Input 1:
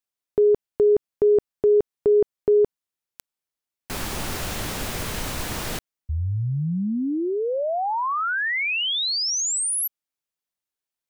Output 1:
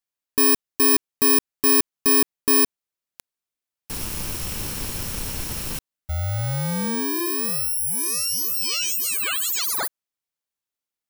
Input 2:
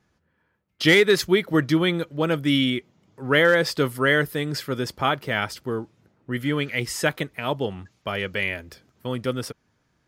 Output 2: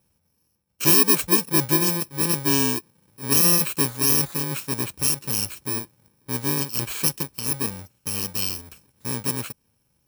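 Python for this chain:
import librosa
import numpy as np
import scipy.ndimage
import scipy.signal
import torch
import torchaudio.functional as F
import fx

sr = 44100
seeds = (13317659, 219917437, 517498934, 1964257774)

y = fx.bit_reversed(x, sr, seeds[0], block=64)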